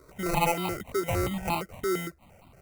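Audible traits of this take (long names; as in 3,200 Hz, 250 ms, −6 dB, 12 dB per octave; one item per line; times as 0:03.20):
aliases and images of a low sample rate 1,700 Hz, jitter 0%
notches that jump at a steady rate 8.7 Hz 780–1,700 Hz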